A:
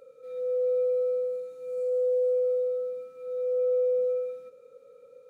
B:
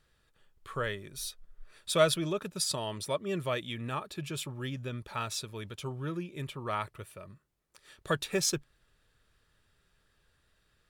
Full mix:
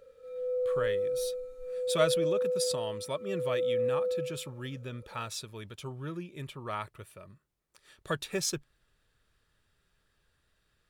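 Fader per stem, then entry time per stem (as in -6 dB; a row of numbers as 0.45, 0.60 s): -4.0, -2.5 dB; 0.00, 0.00 s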